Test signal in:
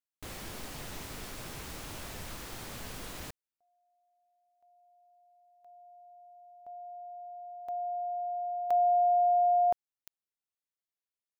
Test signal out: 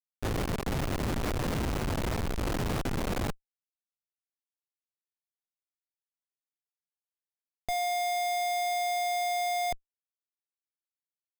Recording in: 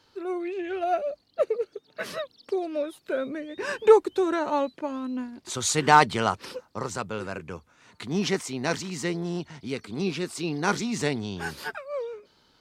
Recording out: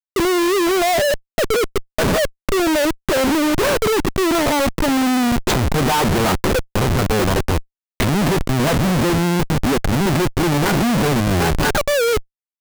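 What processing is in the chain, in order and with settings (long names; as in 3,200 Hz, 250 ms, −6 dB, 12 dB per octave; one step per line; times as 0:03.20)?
leveller curve on the samples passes 5
treble cut that deepens with the level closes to 1,200 Hz, closed at −12 dBFS
comparator with hysteresis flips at −24.5 dBFS
level −1.5 dB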